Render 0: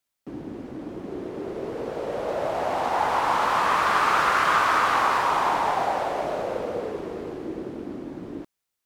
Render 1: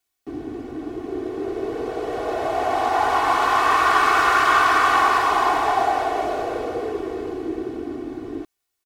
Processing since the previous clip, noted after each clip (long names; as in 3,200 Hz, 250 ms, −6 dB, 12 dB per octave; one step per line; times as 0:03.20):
comb filter 2.7 ms, depth 98%
level +1 dB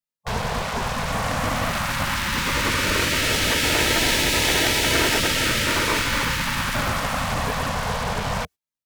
in parallel at −4 dB: fuzz pedal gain 43 dB, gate −43 dBFS
on the sum: gate on every frequency bin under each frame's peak −15 dB weak
low-shelf EQ 240 Hz +7 dB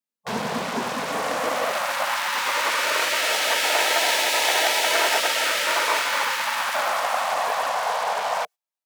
high-pass filter sweep 240 Hz → 700 Hz, 0:00.68–0:02.18
high-pass filter 65 Hz
level −1.5 dB